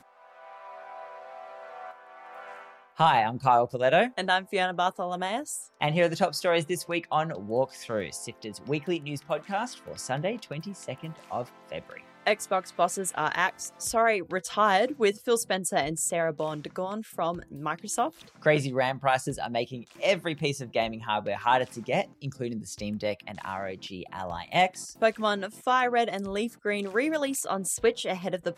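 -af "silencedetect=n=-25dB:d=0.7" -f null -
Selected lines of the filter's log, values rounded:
silence_start: 0.00
silence_end: 3.00 | silence_duration: 3.00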